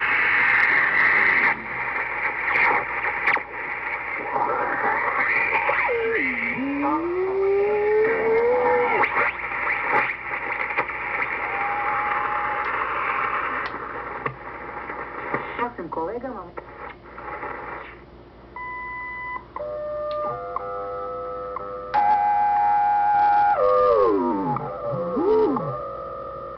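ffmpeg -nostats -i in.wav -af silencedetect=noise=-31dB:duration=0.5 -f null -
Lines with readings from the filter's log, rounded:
silence_start: 17.92
silence_end: 18.56 | silence_duration: 0.64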